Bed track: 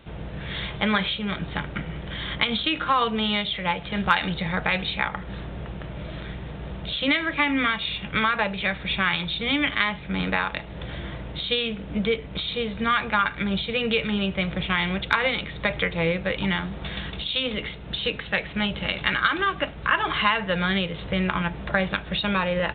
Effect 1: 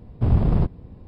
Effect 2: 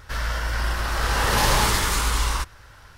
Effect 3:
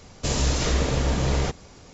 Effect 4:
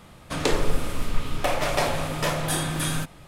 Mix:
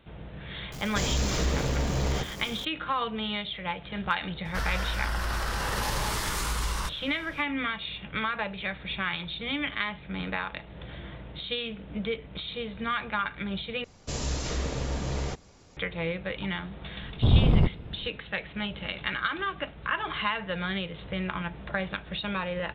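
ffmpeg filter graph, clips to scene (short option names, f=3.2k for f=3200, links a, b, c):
-filter_complex "[3:a]asplit=2[a][b];[0:a]volume=-7.5dB[c];[a]aeval=exprs='val(0)+0.5*0.0224*sgn(val(0))':c=same[d];[2:a]acompressor=threshold=-23dB:ratio=6:attack=3.2:release=140:knee=1:detection=peak[e];[c]asplit=2[f][g];[f]atrim=end=13.844[h];[b]atrim=end=1.93,asetpts=PTS-STARTPTS,volume=-8dB[i];[g]atrim=start=15.766[j];[d]atrim=end=1.93,asetpts=PTS-STARTPTS,volume=-5.5dB,afade=t=in:d=0.004:c=hsin,afade=t=out:st=1.926:d=0.004:c=hsin,adelay=720[k];[e]atrim=end=2.97,asetpts=PTS-STARTPTS,volume=-2.5dB,afade=t=in:d=0.004:c=hsin,afade=t=out:st=2.966:d=0.004:c=hsin,adelay=196245S[l];[1:a]atrim=end=1.07,asetpts=PTS-STARTPTS,volume=-1.5dB,afade=t=in:d=0.004:c=hsin,afade=t=out:st=1.066:d=0.004:c=hsin,adelay=17010[m];[h][i]acrossfade=d=0.004:c1=hsin:c2=hsin[n];[n][j]acrossfade=d=0.004:c1=hsin:c2=hsin[o];[o][k][l][m]amix=inputs=4:normalize=0"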